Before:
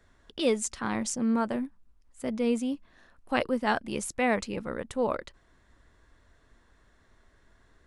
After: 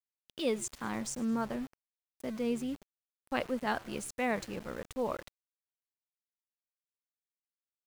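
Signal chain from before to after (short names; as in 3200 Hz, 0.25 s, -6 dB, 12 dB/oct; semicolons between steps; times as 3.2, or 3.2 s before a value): frequency-shifting echo 0.105 s, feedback 55%, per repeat -88 Hz, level -21 dB; sample gate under -39.5 dBFS; gain -6 dB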